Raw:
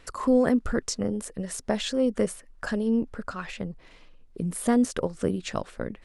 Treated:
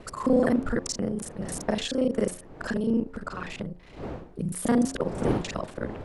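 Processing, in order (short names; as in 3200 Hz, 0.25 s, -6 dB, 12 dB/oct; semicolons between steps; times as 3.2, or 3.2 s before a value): local time reversal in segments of 33 ms; wind noise 460 Hz -39 dBFS; de-hum 89.18 Hz, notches 13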